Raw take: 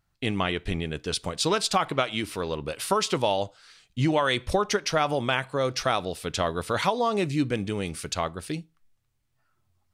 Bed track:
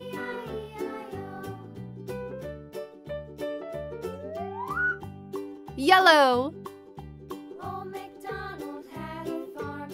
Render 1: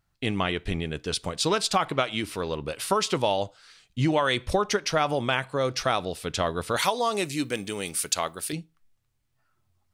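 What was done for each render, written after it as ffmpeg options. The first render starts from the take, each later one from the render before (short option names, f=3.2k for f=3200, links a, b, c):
-filter_complex "[0:a]asettb=1/sr,asplit=3[a][b][c];[a]atrim=end=6.764[d];[b]atrim=start=6.76:end=8.53,asetpts=PTS-STARTPTS,afade=t=in:d=0.004:c=qsin,afade=t=out:st=1.766:d=0.004:c=qsin,aemphasis=mode=production:type=bsi[e];[c]atrim=start=8.526[f];[d][e]acrossfade=d=0.004:c1=hsin:c2=qsin[g];[g][f]acrossfade=d=0.004:c1=qsin:c2=hsin"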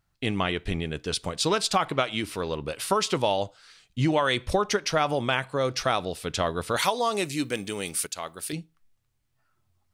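-filter_complex "[0:a]asplit=2[a][b];[a]atrim=end=8.07,asetpts=PTS-STARTPTS,afade=t=out:st=8.066:d=0.004:c=hsin:silence=0.251189[c];[b]atrim=start=8.07,asetpts=PTS-STARTPTS,afade=t=in:d=0.52:silence=0.251189[d];[c][d]concat=n=2:v=0:a=1"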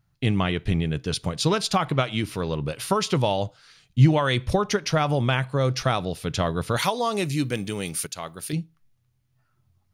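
-af "equalizer=f=130:w=1.1:g=11.5,bandreject=f=7.9k:w=7.7"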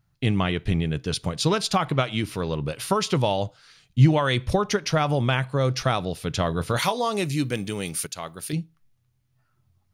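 -filter_complex "[0:a]asettb=1/sr,asplit=3[a][b][c];[a]atrim=end=6.494[d];[b]atrim=start=6.49:end=7.09,asetpts=PTS-STARTPTS,afade=t=in:d=0.004:c=qsin,afade=t=out:st=0.596:d=0.004:c=qsin,asplit=2[e][f];[f]adelay=24,volume=-13dB[g];[e][g]amix=inputs=2:normalize=0,atrim=end_sample=26460[h];[c]atrim=start=7.086[i];[d][h]acrossfade=d=0.004:c1=hsin:c2=qsin[j];[j][i]acrossfade=d=0.004:c1=qsin:c2=hsin"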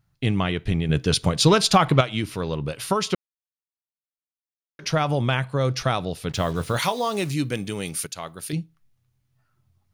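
-filter_complex "[0:a]asettb=1/sr,asplit=3[a][b][c];[a]atrim=end=0.894[d];[b]atrim=start=0.89:end=2.01,asetpts=PTS-STARTPTS,afade=t=in:d=0.004:c=qsin,afade=t=out:st=1.116:d=0.004:c=qsin,acontrast=59[e];[c]atrim=start=2.006[f];[d][e]acrossfade=d=0.004:c1=hsin:c2=qsin[g];[g][f]acrossfade=d=0.004:c1=qsin:c2=hsin,asettb=1/sr,asplit=3[h][i][j];[h]atrim=end=6.294[k];[i]atrim=start=6.29:end=7.34,asetpts=PTS-STARTPTS,afade=t=in:d=0.004:c=qsin,afade=t=out:st=1.046:d=0.004:c=qsin,acrusher=bits=6:mix=0:aa=0.5[l];[j]atrim=start=7.336[m];[k][l]acrossfade=d=0.004:c1=hsin:c2=qsin[n];[n][m]acrossfade=d=0.004:c1=qsin:c2=hsin,asplit=3[o][p][q];[o]atrim=end=3.15,asetpts=PTS-STARTPTS,afade=t=out:st=3.146:d=0.004:c=hsin[r];[p]atrim=start=3.15:end=4.79,asetpts=PTS-STARTPTS,volume=0[s];[q]atrim=start=4.79,asetpts=PTS-STARTPTS,afade=t=in:d=0.004:c=hsin[t];[r][s][t]concat=n=3:v=0:a=1"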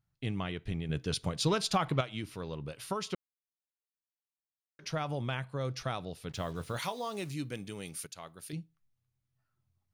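-af "volume=-12.5dB"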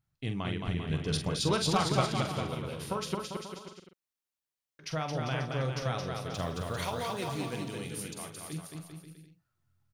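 -filter_complex "[0:a]asplit=2[a][b];[b]adelay=45,volume=-8dB[c];[a][c]amix=inputs=2:normalize=0,aecho=1:1:220|396|536.8|649.4|739.6:0.631|0.398|0.251|0.158|0.1"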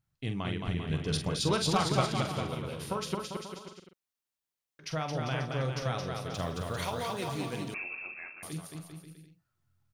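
-filter_complex "[0:a]asettb=1/sr,asplit=3[a][b][c];[a]atrim=end=7.744[d];[b]atrim=start=7.74:end=8.43,asetpts=PTS-STARTPTS,afade=t=in:d=0.004:c=qsin,afade=t=out:st=0.686:d=0.004:c=qsin,lowpass=f=2.4k:t=q:w=0.5098,lowpass=f=2.4k:t=q:w=0.6013,lowpass=f=2.4k:t=q:w=0.9,lowpass=f=2.4k:t=q:w=2.563,afreqshift=-2800[e];[c]atrim=start=8.426[f];[d][e]acrossfade=d=0.004:c1=hsin:c2=qsin[g];[g][f]acrossfade=d=0.004:c1=qsin:c2=hsin"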